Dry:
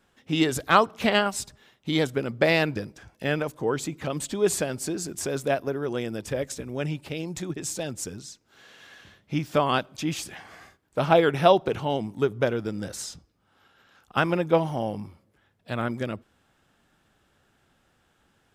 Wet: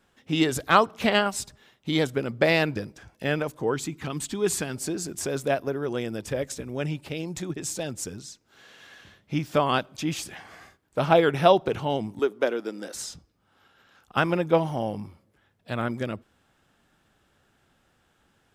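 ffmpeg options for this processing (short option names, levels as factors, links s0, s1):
-filter_complex "[0:a]asettb=1/sr,asplit=3[s0][s1][s2];[s0]atrim=end=3.744[s3];[s1]atrim=start=3.74:end=4.75,asetpts=PTS-STARTPTS,afade=t=in:d=0.004:c=qsin,afade=t=out:st=1.006:d=0.004:c=qsin,equalizer=f=570:t=o:w=0.47:g=-12[s4];[s2]atrim=start=4.746[s5];[s3][s4]acrossfade=d=0.004:c1=hsin:c2=qsin[s6];[s6][s5]acrossfade=d=0.004:c1=qsin:c2=hsin,asettb=1/sr,asplit=3[s7][s8][s9];[s7]atrim=end=12.194[s10];[s8]atrim=start=12.19:end=12.95,asetpts=PTS-STARTPTS,afade=t=in:d=0.004:c=qsin,afade=t=out:st=0.756:d=0.004:c=qsin,highpass=f=260:w=0.5412,highpass=f=260:w=1.3066[s11];[s9]atrim=start=12.946[s12];[s10][s11]acrossfade=d=0.004:c1=hsin:c2=qsin[s13];[s13][s12]acrossfade=d=0.004:c1=qsin:c2=hsin"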